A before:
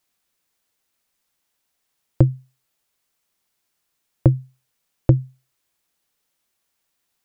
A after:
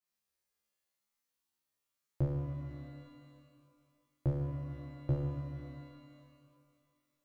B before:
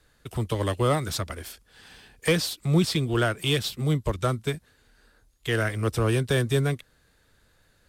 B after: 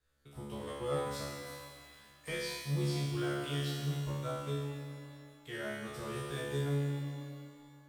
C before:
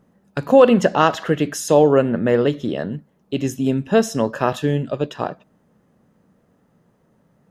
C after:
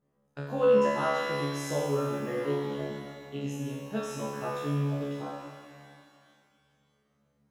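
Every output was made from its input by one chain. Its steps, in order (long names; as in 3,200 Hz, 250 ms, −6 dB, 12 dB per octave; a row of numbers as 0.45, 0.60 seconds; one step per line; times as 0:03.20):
tuned comb filter 71 Hz, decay 1.1 s, harmonics all, mix 100%
reverb with rising layers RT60 2.1 s, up +12 semitones, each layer −8 dB, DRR 5.5 dB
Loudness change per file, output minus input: −17.0, −11.5, −12.0 LU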